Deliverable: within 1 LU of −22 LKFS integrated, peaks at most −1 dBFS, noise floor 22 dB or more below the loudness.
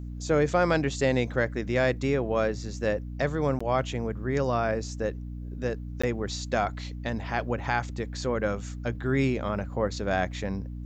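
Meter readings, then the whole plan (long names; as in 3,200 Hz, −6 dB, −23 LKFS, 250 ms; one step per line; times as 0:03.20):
number of dropouts 2; longest dropout 15 ms; mains hum 60 Hz; hum harmonics up to 300 Hz; level of the hum −34 dBFS; integrated loudness −28.5 LKFS; sample peak −12.0 dBFS; target loudness −22.0 LKFS
→ repair the gap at 0:03.59/0:06.02, 15 ms
hum removal 60 Hz, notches 5
level +6.5 dB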